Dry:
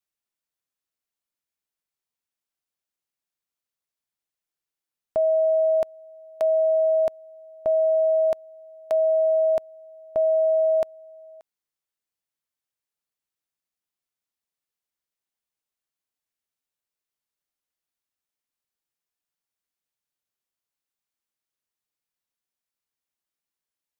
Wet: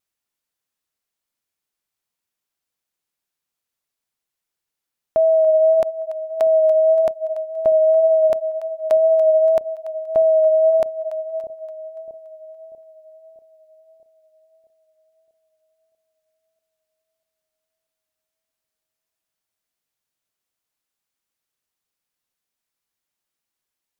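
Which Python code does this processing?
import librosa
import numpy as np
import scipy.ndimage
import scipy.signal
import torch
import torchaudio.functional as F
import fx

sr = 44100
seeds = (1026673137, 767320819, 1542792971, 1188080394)

y = fx.wow_flutter(x, sr, seeds[0], rate_hz=2.1, depth_cents=21.0)
y = fx.echo_split(y, sr, split_hz=660.0, low_ms=640, high_ms=286, feedback_pct=52, wet_db=-13.0)
y = y * 10.0 ** (5.5 / 20.0)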